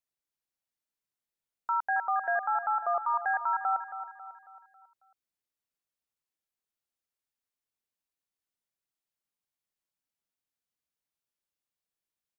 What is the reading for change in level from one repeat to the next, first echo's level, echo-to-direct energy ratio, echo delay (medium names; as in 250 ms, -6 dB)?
-7.0 dB, -11.0 dB, -10.0 dB, 273 ms